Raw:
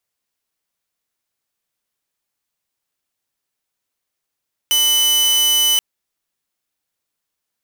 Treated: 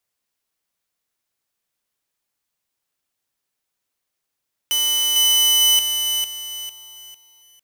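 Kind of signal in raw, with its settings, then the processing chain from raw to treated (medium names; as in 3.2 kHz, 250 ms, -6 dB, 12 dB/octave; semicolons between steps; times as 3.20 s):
tone saw 3 kHz -10 dBFS 1.08 s
peak limiter -14.5 dBFS; bit-crushed delay 451 ms, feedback 35%, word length 9-bit, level -5 dB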